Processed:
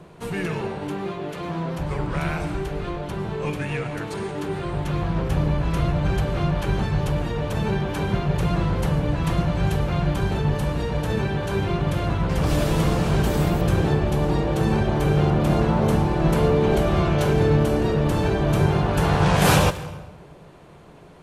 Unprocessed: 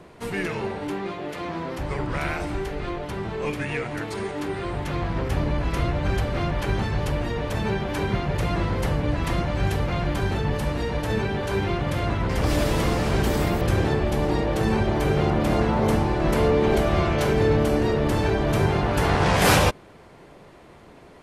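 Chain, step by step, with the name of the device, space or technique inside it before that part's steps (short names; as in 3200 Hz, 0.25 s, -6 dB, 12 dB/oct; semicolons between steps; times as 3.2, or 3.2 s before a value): thirty-one-band EQ 160 Hz +9 dB, 250 Hz -3 dB, 2000 Hz -5 dB, 5000 Hz -3 dB; saturated reverb return (on a send at -10 dB: reverb RT60 0.90 s, pre-delay 95 ms + soft clip -18 dBFS, distortion -12 dB)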